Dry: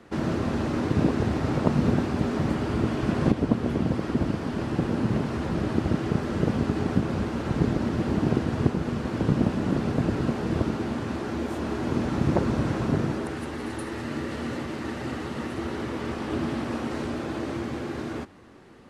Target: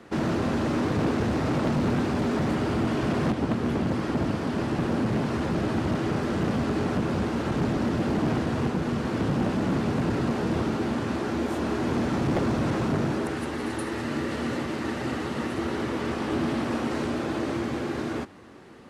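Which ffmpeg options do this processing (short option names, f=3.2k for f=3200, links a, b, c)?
-af "asoftclip=type=hard:threshold=-23dB,lowshelf=f=68:g=-8.5,volume=3dB"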